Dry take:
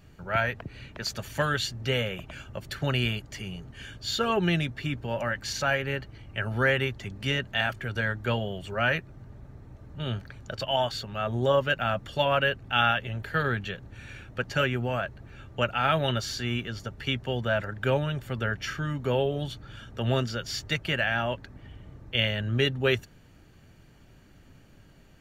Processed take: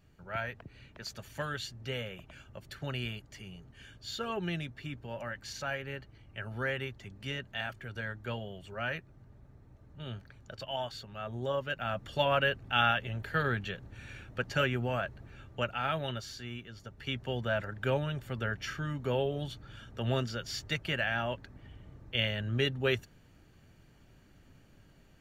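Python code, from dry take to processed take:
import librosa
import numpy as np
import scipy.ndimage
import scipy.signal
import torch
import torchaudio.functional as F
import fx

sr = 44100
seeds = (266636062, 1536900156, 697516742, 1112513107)

y = fx.gain(x, sr, db=fx.line((11.67, -10.0), (12.16, -3.5), (15.21, -3.5), (16.68, -13.5), (17.25, -5.0)))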